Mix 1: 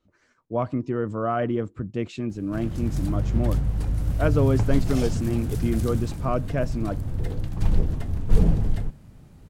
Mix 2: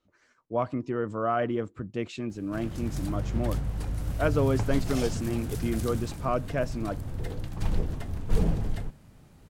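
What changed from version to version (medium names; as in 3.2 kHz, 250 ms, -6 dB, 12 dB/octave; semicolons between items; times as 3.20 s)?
master: add bass shelf 340 Hz -7 dB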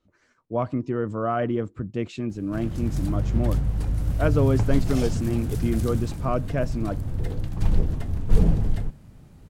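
master: add bass shelf 340 Hz +7 dB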